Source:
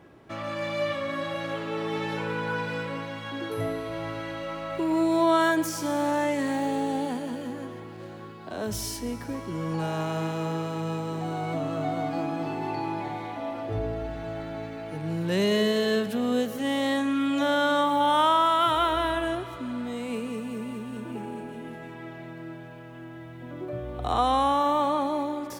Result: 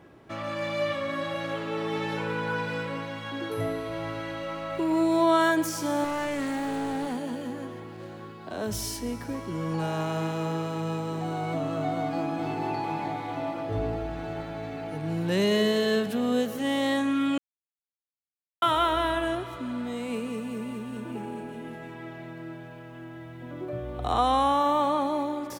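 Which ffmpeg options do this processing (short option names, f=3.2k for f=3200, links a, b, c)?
-filter_complex "[0:a]asettb=1/sr,asplit=3[a][b][c];[a]atrim=end=6.044[d];[b]atrim=start=6.04:end=7.18,asetpts=PTS-STARTPTS,afade=t=in:d=0.004:c=qsin,afade=t=out:st=1.136:d=0.004:c=qsin,volume=27dB,asoftclip=hard,volume=-27dB[e];[c]atrim=start=7.176[f];[d][e]acrossfade=d=0.004:c1=hsin:c2=qsin[g];[g][f]acrossfade=d=0.004:c1=qsin:c2=hsin,asplit=2[h][i];[i]afade=t=in:st=11.93:d=0.01,afade=t=out:st=12.61:d=0.01,aecho=0:1:450|900|1350|1800|2250|2700|3150|3600|4050|4500|4950|5400:0.446684|0.357347|0.285877|0.228702|0.182962|0.146369|0.117095|0.0936763|0.0749411|0.0599529|0.0479623|0.0383698[j];[h][j]amix=inputs=2:normalize=0,asplit=3[k][l][m];[k]atrim=end=17.38,asetpts=PTS-STARTPTS,afade=t=out:st=17.376:d=0.004:c=hsin[n];[l]atrim=start=17.38:end=18.62,asetpts=PTS-STARTPTS,volume=0[o];[m]atrim=start=18.62,asetpts=PTS-STARTPTS,afade=t=in:d=0.004:c=hsin[p];[n][o][p]concat=n=3:v=0:a=1"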